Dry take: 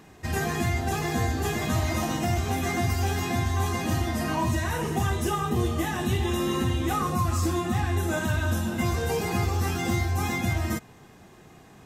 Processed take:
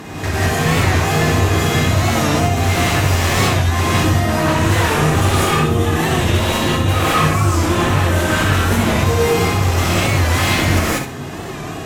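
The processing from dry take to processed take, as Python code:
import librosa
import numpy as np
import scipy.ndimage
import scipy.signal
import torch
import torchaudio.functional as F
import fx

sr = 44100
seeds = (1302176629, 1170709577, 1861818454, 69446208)

p1 = scipy.signal.sosfilt(scipy.signal.butter(2, 41.0, 'highpass', fs=sr, output='sos'), x)
p2 = fx.high_shelf(p1, sr, hz=8300.0, db=-4.0)
p3 = fx.over_compress(p2, sr, threshold_db=-32.0, ratio=-0.5)
p4 = p2 + (p3 * 10.0 ** (2.5 / 20.0))
p5 = fx.tremolo_random(p4, sr, seeds[0], hz=3.5, depth_pct=55)
p6 = fx.fold_sine(p5, sr, drive_db=12, ceiling_db=-10.5)
p7 = fx.echo_feedback(p6, sr, ms=64, feedback_pct=28, wet_db=-8.0)
p8 = fx.rev_gated(p7, sr, seeds[1], gate_ms=220, shape='rising', drr_db=-7.0)
p9 = fx.record_warp(p8, sr, rpm=45.0, depth_cents=100.0)
y = p9 * 10.0 ** (-9.5 / 20.0)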